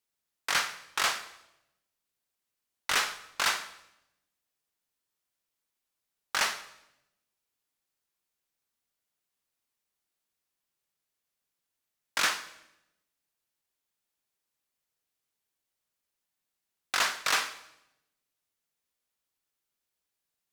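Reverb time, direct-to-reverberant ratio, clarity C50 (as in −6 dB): 0.85 s, 12.0 dB, 13.5 dB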